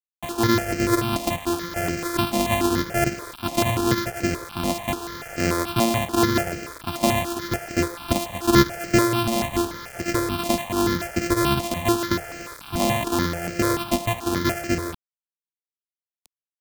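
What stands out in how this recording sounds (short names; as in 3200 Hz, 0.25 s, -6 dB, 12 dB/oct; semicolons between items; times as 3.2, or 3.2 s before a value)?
a buzz of ramps at a fixed pitch in blocks of 128 samples; tremolo triangle 2.6 Hz, depth 40%; a quantiser's noise floor 6-bit, dither none; notches that jump at a steady rate 6.9 Hz 410–3600 Hz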